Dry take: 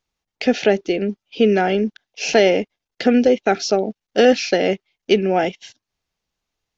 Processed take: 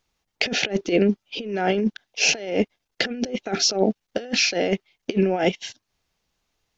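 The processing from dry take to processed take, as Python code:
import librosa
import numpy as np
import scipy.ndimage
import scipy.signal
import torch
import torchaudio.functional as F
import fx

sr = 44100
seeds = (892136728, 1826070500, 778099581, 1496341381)

y = fx.over_compress(x, sr, threshold_db=-21.0, ratio=-0.5)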